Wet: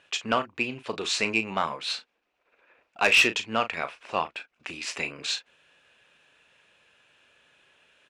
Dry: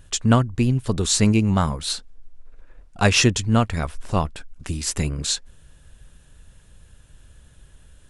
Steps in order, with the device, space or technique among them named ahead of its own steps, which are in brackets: intercom (band-pass 500–3900 Hz; peaking EQ 2.5 kHz +10.5 dB 0.4 oct; saturation -10 dBFS, distortion -15 dB; doubling 36 ms -11 dB); trim -1 dB

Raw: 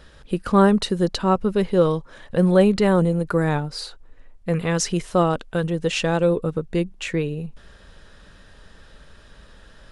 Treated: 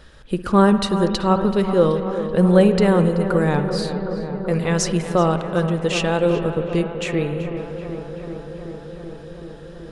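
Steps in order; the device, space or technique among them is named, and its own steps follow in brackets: dub delay into a spring reverb (filtered feedback delay 381 ms, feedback 83%, low-pass 2.3 kHz, level -10.5 dB; spring tank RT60 2.4 s, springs 55 ms, chirp 55 ms, DRR 10 dB); trim +1 dB

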